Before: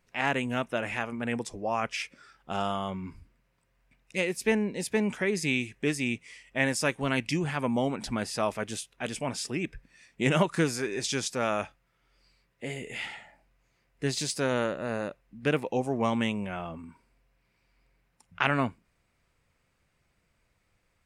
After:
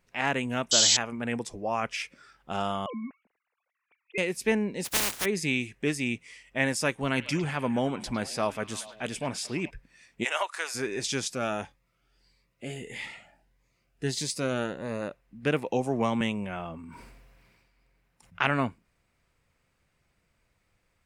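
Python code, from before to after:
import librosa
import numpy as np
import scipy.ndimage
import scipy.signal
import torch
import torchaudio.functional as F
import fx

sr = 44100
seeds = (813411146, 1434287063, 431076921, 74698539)

y = fx.spec_paint(x, sr, seeds[0], shape='noise', start_s=0.71, length_s=0.26, low_hz=2900.0, high_hz=7900.0, level_db=-21.0)
y = fx.sine_speech(y, sr, at=(2.86, 4.18))
y = fx.spec_flatten(y, sr, power=0.13, at=(4.84, 5.24), fade=0.02)
y = fx.echo_stepped(y, sr, ms=106, hz=3100.0, octaves=-0.7, feedback_pct=70, wet_db=-10.0, at=(7.15, 9.69), fade=0.02)
y = fx.highpass(y, sr, hz=680.0, slope=24, at=(10.23, 10.74), fade=0.02)
y = fx.notch_cascade(y, sr, direction='rising', hz=1.6, at=(11.33, 15.01), fade=0.02)
y = fx.band_squash(y, sr, depth_pct=70, at=(15.72, 16.21))
y = fx.sustainer(y, sr, db_per_s=30.0, at=(16.81, 18.46))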